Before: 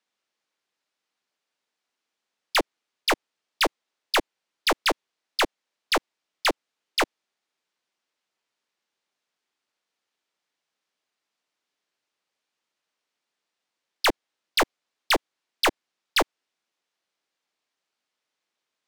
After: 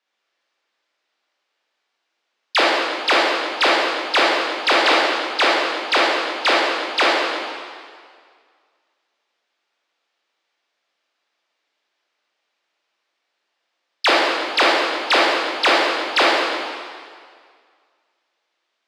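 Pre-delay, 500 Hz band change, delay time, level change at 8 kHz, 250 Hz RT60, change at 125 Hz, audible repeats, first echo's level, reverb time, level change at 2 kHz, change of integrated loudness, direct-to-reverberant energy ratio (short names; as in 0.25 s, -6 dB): 21 ms, +10.0 dB, none, +1.5 dB, 1.7 s, n/a, none, none, 2.0 s, +11.0 dB, +8.5 dB, -5.5 dB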